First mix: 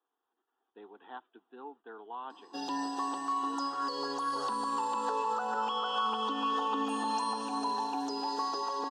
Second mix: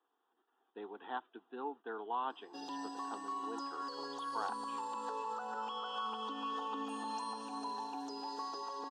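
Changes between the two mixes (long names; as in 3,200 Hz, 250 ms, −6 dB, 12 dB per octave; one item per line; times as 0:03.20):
speech +4.5 dB
background −8.5 dB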